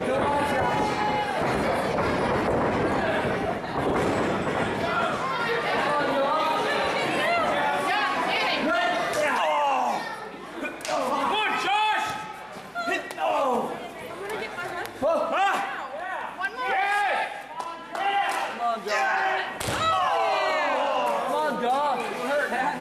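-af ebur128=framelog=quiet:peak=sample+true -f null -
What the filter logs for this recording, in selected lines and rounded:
Integrated loudness:
  I:         -25.2 LUFS
  Threshold: -35.3 LUFS
Loudness range:
  LRA:         3.6 LU
  Threshold: -45.4 LUFS
  LRA low:   -27.3 LUFS
  LRA high:  -23.8 LUFS
Sample peak:
  Peak:      -11.2 dBFS
True peak:
  Peak:      -10.1 dBFS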